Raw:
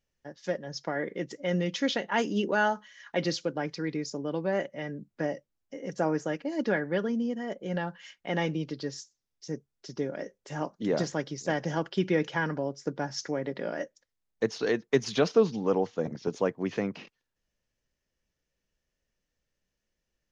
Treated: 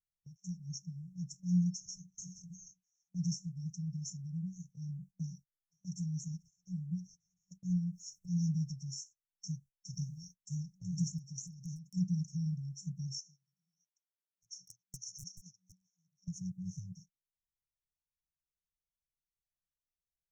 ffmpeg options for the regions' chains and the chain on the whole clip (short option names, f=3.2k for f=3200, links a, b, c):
-filter_complex "[0:a]asettb=1/sr,asplit=3[a][b][c];[a]atrim=end=7.704[d];[b]atrim=start=7.7:end=8.74,asetpts=PTS-STARTPTS,afade=t=in:d=0.004:c=qsin,afade=t=out:st=1.036:d=0.004:c=qsin,acompressor=mode=upward:threshold=-32dB:ratio=2.5:attack=3.2:release=140:knee=2.83:detection=peak,equalizer=f=1.6k:w=0.56:g=14.5[e];[c]atrim=start=8.736[f];[d][e]acrossfade=d=0.004:c1=hsin:c2=qsin[g];[g][f]acrossfade=d=0.004:c1=qsin:c2=hsin,asettb=1/sr,asplit=3[h][i][j];[h]atrim=end=9.934[k];[i]atrim=start=9.93:end=10.38,asetpts=PTS-STARTPTS,afade=t=in:d=0.004:c=qsin,afade=t=out:st=0.446:d=0.004:c=qsin,bass=f=250:g=4,treble=f=4k:g=7,asplit=2[l][m];[m]adelay=40,volume=-7dB[n];[l][n]amix=inputs=2:normalize=0,atrim=end_sample=19845[o];[j]atrim=start=10.376[p];[k][o]acrossfade=d=0.004:c1=hsin:c2=qsin[q];[q][p]acrossfade=d=0.004:c1=qsin:c2=hsin,asettb=1/sr,asplit=3[r][s][t];[r]atrim=end=11.184[u];[s]atrim=start=11.18:end=11.95,asetpts=PTS-STARTPTS,afade=t=in:d=0.004:c=qsin,afade=t=out:st=0.766:d=0.004:c=qsin,highpass=140,acompressor=threshold=-34dB:ratio=12:attack=3.2:release=140:knee=1:detection=peak,aeval=exprs='0.0335*(abs(mod(val(0)/0.0335+3,4)-2)-1)':c=same[v];[t]atrim=start=11.946[w];[u][v]acrossfade=d=0.004:c1=hsin:c2=qsin[x];[x][w]acrossfade=d=0.004:c1=qsin:c2=hsin,asettb=1/sr,asplit=3[y][z][aa];[y]atrim=end=13.184[ab];[z]atrim=start=13.18:end=16.28,asetpts=PTS-STARTPTS,afade=t=in:d=0.004:c=qsin,afade=t=out:st=3.096:d=0.004:c=qsin,highpass=600,lowpass=5.6k,aeval=exprs='0.0841*(abs(mod(val(0)/0.0841+3,4)-2)-1)':c=same[ac];[aa]atrim=start=16.276[ad];[ab][ac]acrossfade=d=0.004:c1=hsin:c2=qsin[ae];[ae][ad]acrossfade=d=0.004:c1=qsin:c2=hsin,afftfilt=real='re*(1-between(b*sr/4096,190,5400))':imag='im*(1-between(b*sr/4096,190,5400))':win_size=4096:overlap=0.75,agate=range=-19dB:threshold=-56dB:ratio=16:detection=peak,acrossover=split=480[af][ag];[ag]acompressor=threshold=-41dB:ratio=6[ah];[af][ah]amix=inputs=2:normalize=0,volume=1.5dB"